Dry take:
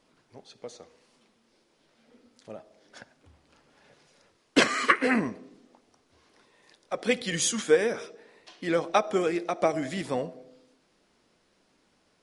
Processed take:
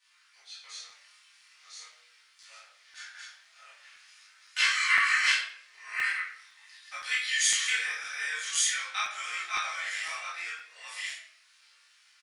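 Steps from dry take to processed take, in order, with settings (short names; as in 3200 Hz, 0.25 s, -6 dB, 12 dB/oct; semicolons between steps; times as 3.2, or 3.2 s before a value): reverse delay 0.617 s, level -1 dB; compressor 1.5:1, threshold -36 dBFS, peak gain reduction 8 dB; HPF 1500 Hz 24 dB/oct; doubler 29 ms -2.5 dB; shoebox room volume 120 m³, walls mixed, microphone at 2 m; chorus 0.42 Hz, delay 17.5 ms, depth 6.7 ms; crackling interface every 0.51 s, samples 128, zero, from 0.9; Doppler distortion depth 0.22 ms; gain +1.5 dB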